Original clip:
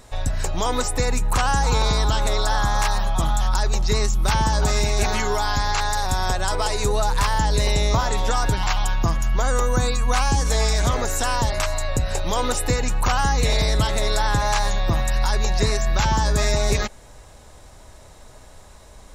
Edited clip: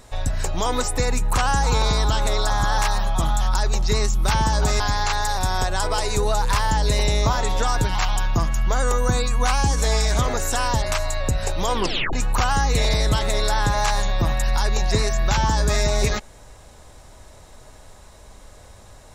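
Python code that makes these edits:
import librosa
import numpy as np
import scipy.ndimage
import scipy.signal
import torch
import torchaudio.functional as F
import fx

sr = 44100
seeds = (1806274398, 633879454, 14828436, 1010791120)

y = fx.edit(x, sr, fx.reverse_span(start_s=2.5, length_s=0.28),
    fx.cut(start_s=4.8, length_s=0.68),
    fx.tape_stop(start_s=12.42, length_s=0.39), tone=tone)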